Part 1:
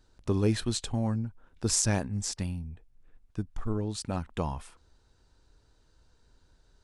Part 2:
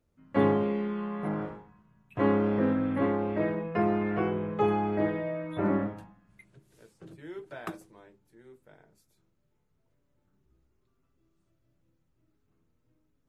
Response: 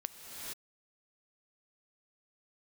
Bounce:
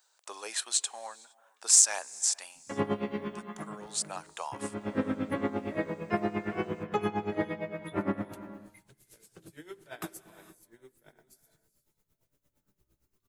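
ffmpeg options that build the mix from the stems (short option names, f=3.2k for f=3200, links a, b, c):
-filter_complex "[0:a]highpass=f=670:w=0.5412,highpass=f=670:w=1.3066,highshelf=f=6.3k:g=9,aexciter=amount=1.5:drive=4.8:freq=6.7k,volume=-1dB,asplit=3[a][b][c];[b]volume=-20.5dB[d];[1:a]crystalizer=i=4.5:c=0,aeval=exprs='val(0)*pow(10,-18*(0.5-0.5*cos(2*PI*8.7*n/s))/20)':c=same,adelay=2350,volume=-2dB,asplit=2[e][f];[f]volume=-9dB[g];[c]apad=whole_len=689436[h];[e][h]sidechaincompress=threshold=-58dB:ratio=8:attack=46:release=274[i];[2:a]atrim=start_sample=2205[j];[d][g]amix=inputs=2:normalize=0[k];[k][j]afir=irnorm=-1:irlink=0[l];[a][i][l]amix=inputs=3:normalize=0"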